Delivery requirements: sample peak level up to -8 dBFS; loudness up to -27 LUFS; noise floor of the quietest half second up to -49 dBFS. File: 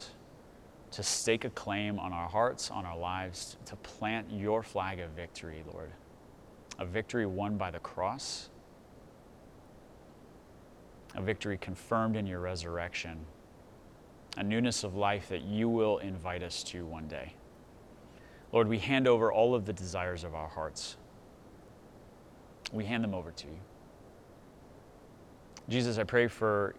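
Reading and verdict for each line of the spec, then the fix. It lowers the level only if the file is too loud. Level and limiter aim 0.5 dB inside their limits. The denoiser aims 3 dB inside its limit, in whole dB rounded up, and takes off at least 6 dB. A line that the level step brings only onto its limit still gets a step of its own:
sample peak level -13.5 dBFS: OK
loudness -34.0 LUFS: OK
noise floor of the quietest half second -56 dBFS: OK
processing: none

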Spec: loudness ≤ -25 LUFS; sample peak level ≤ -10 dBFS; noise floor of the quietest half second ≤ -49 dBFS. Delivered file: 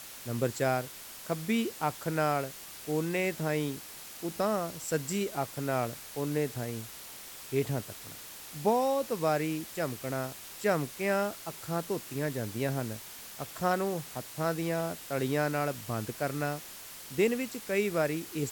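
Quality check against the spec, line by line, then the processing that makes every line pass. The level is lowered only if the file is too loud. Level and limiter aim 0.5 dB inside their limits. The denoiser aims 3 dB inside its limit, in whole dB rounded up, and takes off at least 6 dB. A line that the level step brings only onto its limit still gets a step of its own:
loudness -32.5 LUFS: OK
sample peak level -13.5 dBFS: OK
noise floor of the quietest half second -46 dBFS: fail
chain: denoiser 6 dB, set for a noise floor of -46 dBFS

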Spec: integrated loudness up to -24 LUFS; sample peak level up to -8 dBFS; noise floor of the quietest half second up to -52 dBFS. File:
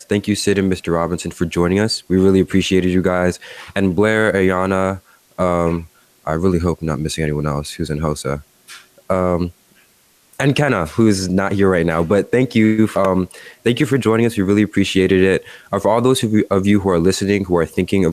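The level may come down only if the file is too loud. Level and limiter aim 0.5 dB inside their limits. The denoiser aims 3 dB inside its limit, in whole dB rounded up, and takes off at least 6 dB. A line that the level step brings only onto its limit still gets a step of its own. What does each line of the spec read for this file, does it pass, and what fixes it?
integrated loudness -17.0 LUFS: fail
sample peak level -3.5 dBFS: fail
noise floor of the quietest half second -55 dBFS: OK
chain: gain -7.5 dB

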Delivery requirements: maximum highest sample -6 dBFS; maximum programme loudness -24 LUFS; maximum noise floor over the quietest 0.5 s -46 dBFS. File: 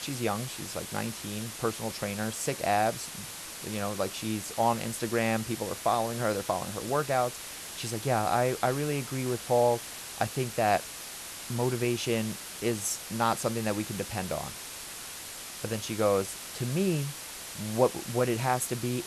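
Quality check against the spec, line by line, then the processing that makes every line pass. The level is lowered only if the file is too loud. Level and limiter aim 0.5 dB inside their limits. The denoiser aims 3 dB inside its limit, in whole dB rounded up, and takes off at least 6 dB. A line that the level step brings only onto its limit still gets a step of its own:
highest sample -10.5 dBFS: OK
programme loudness -30.5 LUFS: OK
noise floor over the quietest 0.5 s -42 dBFS: fail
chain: denoiser 7 dB, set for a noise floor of -42 dBFS

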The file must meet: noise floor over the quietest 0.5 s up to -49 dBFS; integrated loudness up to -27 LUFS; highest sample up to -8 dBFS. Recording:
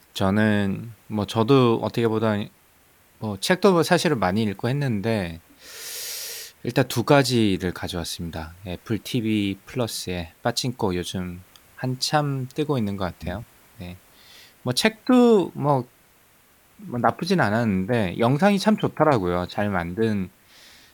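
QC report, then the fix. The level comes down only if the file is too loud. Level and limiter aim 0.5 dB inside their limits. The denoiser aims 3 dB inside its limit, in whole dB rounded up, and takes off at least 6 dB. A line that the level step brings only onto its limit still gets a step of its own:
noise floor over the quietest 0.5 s -57 dBFS: OK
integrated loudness -23.0 LUFS: fail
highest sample -3.5 dBFS: fail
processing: gain -4.5 dB; limiter -8.5 dBFS

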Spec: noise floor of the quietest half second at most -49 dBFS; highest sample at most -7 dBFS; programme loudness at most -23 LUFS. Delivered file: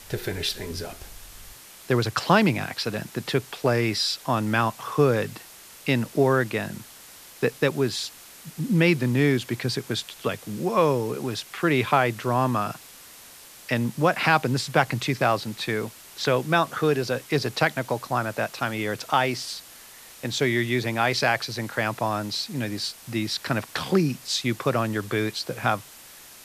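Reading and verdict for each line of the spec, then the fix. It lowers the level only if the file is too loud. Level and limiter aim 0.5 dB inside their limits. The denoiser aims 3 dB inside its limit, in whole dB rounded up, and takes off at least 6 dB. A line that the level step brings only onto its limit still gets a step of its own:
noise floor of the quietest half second -47 dBFS: fail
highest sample -4.0 dBFS: fail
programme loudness -25.0 LUFS: OK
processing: denoiser 6 dB, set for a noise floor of -47 dBFS; limiter -7.5 dBFS

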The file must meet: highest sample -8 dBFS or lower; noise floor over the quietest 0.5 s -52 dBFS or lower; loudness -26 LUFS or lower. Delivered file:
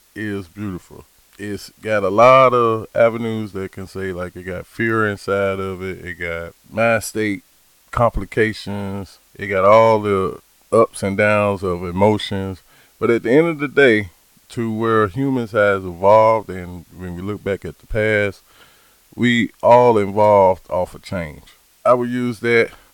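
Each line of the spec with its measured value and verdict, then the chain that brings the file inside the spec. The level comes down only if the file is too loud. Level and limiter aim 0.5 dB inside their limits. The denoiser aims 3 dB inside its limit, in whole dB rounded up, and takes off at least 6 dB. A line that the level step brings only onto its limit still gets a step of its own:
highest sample -1.5 dBFS: fail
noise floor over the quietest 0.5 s -54 dBFS: OK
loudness -17.0 LUFS: fail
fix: gain -9.5 dB

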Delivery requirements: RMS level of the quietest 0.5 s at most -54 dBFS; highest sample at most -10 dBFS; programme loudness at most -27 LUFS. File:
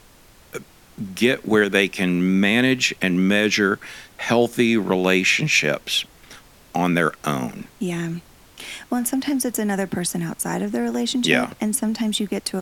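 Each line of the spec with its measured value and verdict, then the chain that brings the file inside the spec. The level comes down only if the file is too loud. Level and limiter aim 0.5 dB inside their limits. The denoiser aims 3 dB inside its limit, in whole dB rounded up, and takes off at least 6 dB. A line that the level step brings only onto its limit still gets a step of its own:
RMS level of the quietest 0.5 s -50 dBFS: fail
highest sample -2.5 dBFS: fail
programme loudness -20.5 LUFS: fail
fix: gain -7 dB; limiter -10.5 dBFS

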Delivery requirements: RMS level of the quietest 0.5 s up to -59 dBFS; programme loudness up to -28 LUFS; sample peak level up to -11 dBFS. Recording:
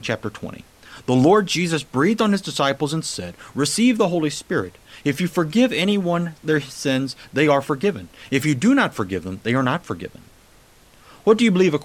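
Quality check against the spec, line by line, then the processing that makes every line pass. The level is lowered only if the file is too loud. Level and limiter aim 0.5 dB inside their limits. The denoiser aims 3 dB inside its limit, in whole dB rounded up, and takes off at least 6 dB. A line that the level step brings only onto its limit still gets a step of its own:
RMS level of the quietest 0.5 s -51 dBFS: fail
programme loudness -20.0 LUFS: fail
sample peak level -3.5 dBFS: fail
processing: gain -8.5 dB

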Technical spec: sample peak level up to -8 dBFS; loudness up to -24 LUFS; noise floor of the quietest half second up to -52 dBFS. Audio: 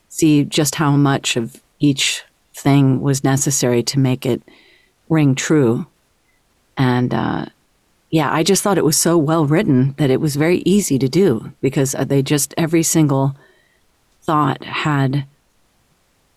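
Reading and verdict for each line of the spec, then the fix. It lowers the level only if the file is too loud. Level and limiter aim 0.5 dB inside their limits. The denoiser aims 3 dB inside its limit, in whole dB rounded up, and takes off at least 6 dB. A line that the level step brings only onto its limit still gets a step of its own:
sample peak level -5.0 dBFS: fail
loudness -16.5 LUFS: fail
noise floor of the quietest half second -60 dBFS: OK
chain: gain -8 dB

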